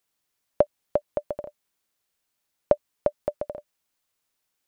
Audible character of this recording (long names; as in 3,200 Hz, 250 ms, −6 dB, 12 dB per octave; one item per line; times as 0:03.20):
background noise floor −79 dBFS
spectral slope −4.0 dB per octave